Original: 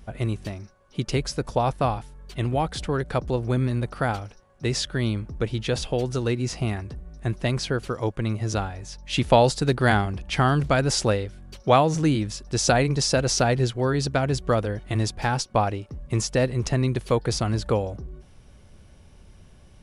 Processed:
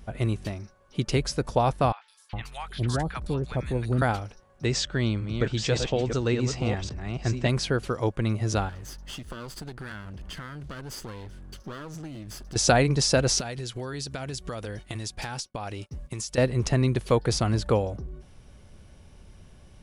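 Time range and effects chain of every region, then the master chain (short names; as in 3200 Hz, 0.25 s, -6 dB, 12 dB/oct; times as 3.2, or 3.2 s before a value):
1.92–4.02 bell 580 Hz -5 dB 2 oct + three bands offset in time mids, highs, lows 0.16/0.41 s, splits 890/3700 Hz
4.65–7.49 reverse delay 0.561 s, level -6 dB + Chebyshev low-pass 8300 Hz, order 6
8.69–12.56 minimum comb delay 0.64 ms + compressor 10:1, threshold -35 dBFS
13.4–16.38 expander -35 dBFS + high shelf 2300 Hz +11.5 dB + compressor 10:1, threshold -30 dBFS
whole clip: dry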